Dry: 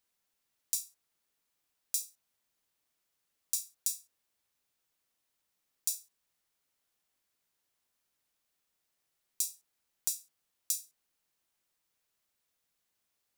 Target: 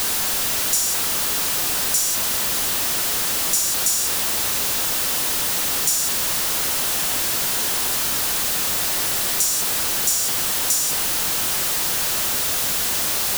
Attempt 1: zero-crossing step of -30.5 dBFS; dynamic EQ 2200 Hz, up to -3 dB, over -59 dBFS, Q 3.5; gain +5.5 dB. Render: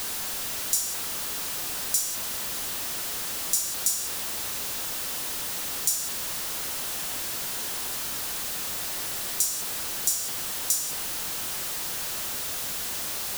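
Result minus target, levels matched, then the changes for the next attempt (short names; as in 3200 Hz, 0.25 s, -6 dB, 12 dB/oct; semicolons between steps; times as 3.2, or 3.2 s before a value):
zero-crossing step: distortion -6 dB
change: zero-crossing step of -20.5 dBFS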